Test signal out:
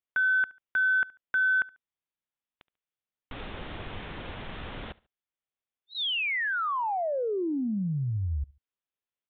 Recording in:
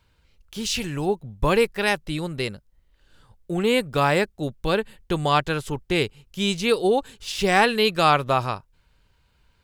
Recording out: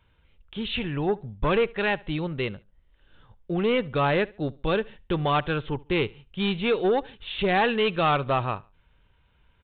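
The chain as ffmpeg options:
-af "aresample=8000,asoftclip=type=tanh:threshold=0.158,aresample=44100,aecho=1:1:71|142:0.0668|0.0207"

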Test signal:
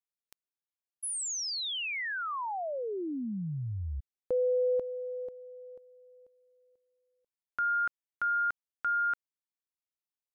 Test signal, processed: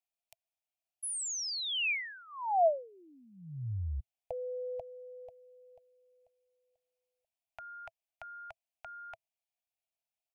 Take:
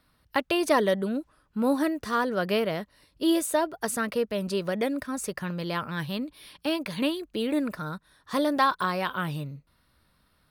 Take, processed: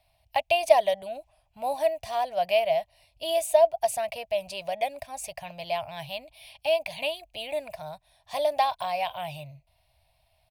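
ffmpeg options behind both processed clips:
-af "firequalizer=gain_entry='entry(110,0);entry(210,-24);entry(300,-23);entry(430,-22);entry(660,13);entry(1300,-21);entry(2400,5);entry(3700,-2)':delay=0.05:min_phase=1"

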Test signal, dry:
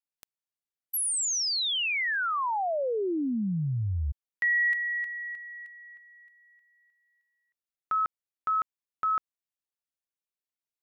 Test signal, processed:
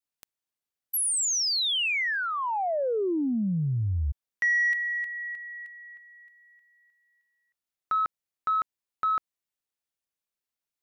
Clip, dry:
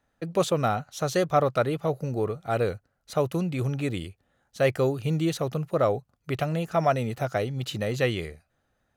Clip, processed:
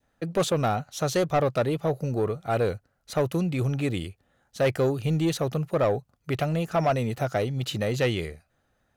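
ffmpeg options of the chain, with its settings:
-af "adynamicequalizer=threshold=0.01:dfrequency=1300:dqfactor=1.4:tfrequency=1300:tqfactor=1.4:attack=5:release=100:ratio=0.375:range=2.5:mode=cutabove:tftype=bell,asoftclip=type=tanh:threshold=0.119,volume=1.33"

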